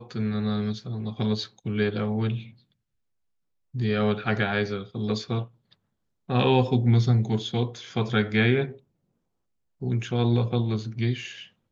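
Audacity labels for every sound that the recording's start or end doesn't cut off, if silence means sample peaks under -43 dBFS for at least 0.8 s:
3.740000	8.770000	sound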